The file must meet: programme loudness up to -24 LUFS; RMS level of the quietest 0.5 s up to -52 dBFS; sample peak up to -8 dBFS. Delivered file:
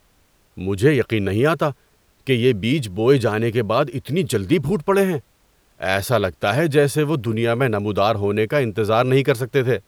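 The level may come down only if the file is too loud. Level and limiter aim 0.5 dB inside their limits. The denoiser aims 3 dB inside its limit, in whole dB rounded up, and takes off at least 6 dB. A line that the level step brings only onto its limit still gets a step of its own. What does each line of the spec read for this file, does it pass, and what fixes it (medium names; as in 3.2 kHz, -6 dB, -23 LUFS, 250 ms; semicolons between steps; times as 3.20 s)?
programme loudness -19.5 LUFS: fail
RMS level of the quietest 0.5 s -59 dBFS: pass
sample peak -3.0 dBFS: fail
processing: trim -5 dB; peak limiter -8.5 dBFS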